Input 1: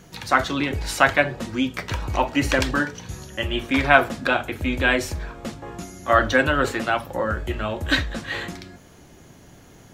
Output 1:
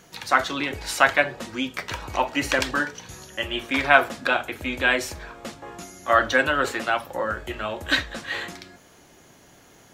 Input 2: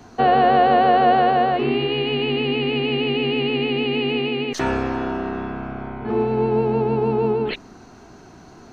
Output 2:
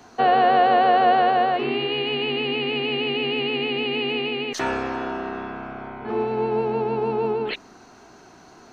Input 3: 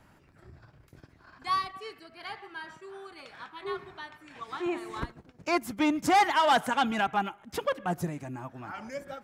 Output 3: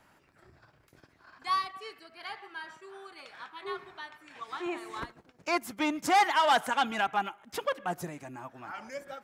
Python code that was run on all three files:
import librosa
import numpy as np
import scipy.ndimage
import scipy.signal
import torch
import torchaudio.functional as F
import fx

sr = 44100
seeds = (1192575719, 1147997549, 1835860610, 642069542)

y = fx.low_shelf(x, sr, hz=260.0, db=-12.0)